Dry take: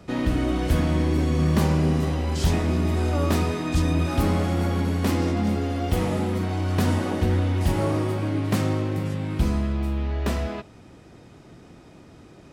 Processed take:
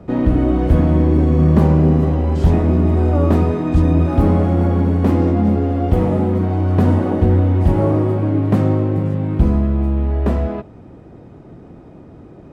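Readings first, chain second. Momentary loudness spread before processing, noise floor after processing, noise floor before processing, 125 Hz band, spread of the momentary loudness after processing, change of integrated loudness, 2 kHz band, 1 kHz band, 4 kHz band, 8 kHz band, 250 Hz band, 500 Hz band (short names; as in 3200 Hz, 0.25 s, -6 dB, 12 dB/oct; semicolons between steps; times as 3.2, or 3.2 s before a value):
5 LU, -40 dBFS, -49 dBFS, +8.5 dB, 5 LU, +8.0 dB, -1.5 dB, +5.0 dB, n/a, under -10 dB, +8.5 dB, +8.0 dB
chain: EQ curve 460 Hz 0 dB, 770 Hz -2 dB, 5300 Hz -20 dB; gain +8.5 dB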